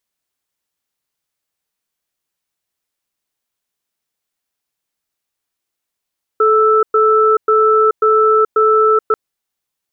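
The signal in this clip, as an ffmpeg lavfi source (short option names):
-f lavfi -i "aevalsrc='0.282*(sin(2*PI*434*t)+sin(2*PI*1320*t))*clip(min(mod(t,0.54),0.43-mod(t,0.54))/0.005,0,1)':d=2.74:s=44100"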